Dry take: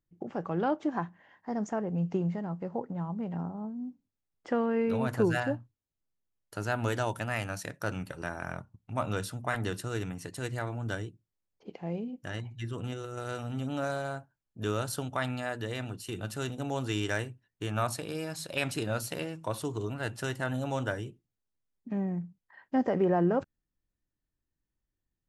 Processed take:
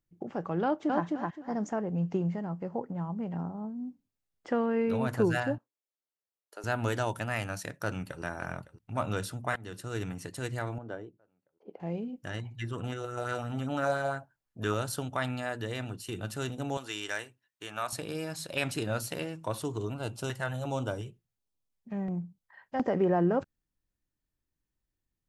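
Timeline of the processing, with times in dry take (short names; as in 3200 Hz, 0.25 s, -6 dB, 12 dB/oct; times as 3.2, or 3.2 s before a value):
0.63–1.04 echo throw 0.26 s, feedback 25%, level -2 dB
2.21–3.35 notch 3800 Hz
5.58–6.64 ladder high-pass 340 Hz, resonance 30%
7.82–8.22 echo throw 0.56 s, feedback 70%, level -16.5 dB
9.56–10.02 fade in, from -20 dB
10.78–11.8 band-pass 530 Hz, Q 1
12.52–14.74 LFO bell 5.8 Hz 590–1900 Hz +9 dB
16.77–17.93 HPF 980 Hz 6 dB/oct
19.94–22.82 LFO notch square 1.4 Hz 290–1800 Hz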